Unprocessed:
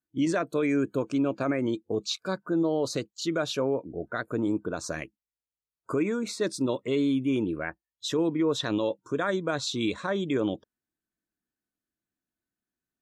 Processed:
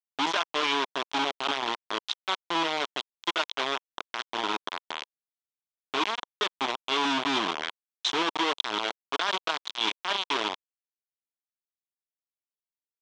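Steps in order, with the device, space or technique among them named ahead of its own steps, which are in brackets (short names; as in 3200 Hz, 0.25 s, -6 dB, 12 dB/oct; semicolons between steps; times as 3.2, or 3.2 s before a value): 7.05–8.22 tone controls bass +10 dB, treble +10 dB; hand-held game console (bit-crush 4-bit; speaker cabinet 500–5400 Hz, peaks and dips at 520 Hz -9 dB, 1000 Hz +5 dB, 1800 Hz -3 dB, 3300 Hz +8 dB, 4800 Hz -4 dB)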